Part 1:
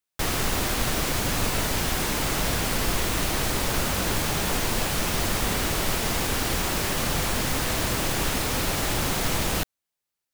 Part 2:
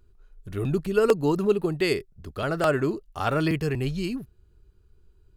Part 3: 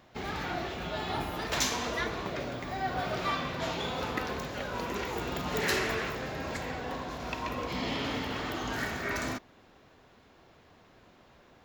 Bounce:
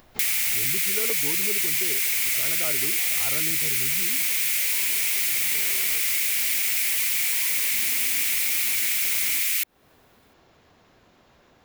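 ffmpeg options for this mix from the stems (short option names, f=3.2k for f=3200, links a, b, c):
-filter_complex "[0:a]highpass=f=2.2k:t=q:w=5.7,crystalizer=i=2.5:c=0,volume=-1dB[a];[1:a]volume=-3dB,asplit=2[b][c];[2:a]acompressor=mode=upward:threshold=-47dB:ratio=2.5,volume=-4dB[d];[c]apad=whole_len=513563[e];[d][e]sidechaincompress=threshold=-37dB:ratio=8:attack=16:release=135[f];[a][b][f]amix=inputs=3:normalize=0,highshelf=f=6.1k:g=7,acompressor=threshold=-26dB:ratio=2.5"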